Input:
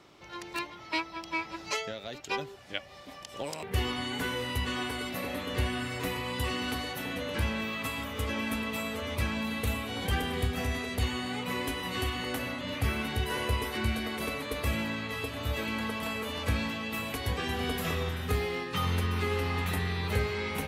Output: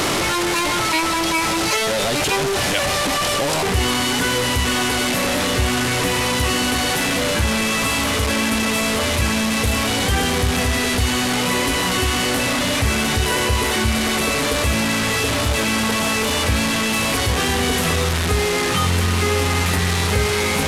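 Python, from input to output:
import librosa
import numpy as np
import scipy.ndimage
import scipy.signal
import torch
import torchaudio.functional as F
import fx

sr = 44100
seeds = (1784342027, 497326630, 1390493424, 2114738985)

y = fx.delta_mod(x, sr, bps=64000, step_db=-26.5)
y = fx.env_flatten(y, sr, amount_pct=50)
y = y * librosa.db_to_amplitude(8.5)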